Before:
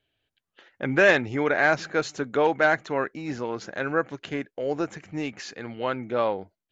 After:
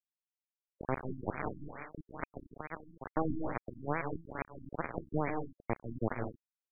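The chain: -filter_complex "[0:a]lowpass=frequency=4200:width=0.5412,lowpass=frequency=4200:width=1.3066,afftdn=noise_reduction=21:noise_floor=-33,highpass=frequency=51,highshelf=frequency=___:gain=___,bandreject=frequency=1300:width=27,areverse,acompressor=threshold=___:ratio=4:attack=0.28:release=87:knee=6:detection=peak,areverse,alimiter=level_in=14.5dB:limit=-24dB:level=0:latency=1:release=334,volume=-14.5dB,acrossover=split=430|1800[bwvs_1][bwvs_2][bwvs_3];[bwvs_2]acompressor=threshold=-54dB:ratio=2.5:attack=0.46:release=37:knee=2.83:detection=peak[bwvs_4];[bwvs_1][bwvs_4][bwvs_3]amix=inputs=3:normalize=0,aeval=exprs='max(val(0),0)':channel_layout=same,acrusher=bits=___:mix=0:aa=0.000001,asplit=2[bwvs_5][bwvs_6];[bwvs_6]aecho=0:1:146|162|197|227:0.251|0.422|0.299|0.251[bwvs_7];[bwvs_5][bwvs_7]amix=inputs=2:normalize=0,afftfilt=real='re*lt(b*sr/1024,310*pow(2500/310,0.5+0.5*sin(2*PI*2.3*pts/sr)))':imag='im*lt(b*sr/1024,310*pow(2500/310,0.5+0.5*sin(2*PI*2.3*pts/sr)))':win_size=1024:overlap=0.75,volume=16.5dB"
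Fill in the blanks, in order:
2100, -8, -36dB, 6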